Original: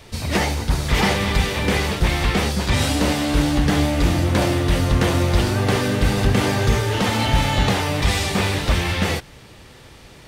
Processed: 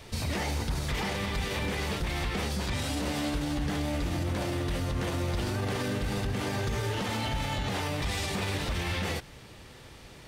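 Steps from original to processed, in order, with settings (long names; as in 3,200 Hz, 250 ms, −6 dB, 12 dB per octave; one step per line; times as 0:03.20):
speech leveller
brickwall limiter −16 dBFS, peak gain reduction 10.5 dB
level −6.5 dB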